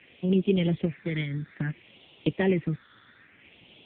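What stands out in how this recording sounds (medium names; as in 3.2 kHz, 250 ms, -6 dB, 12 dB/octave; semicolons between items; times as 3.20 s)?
random-step tremolo; a quantiser's noise floor 8-bit, dither triangular; phasing stages 6, 0.59 Hz, lowest notch 710–1500 Hz; AMR-NB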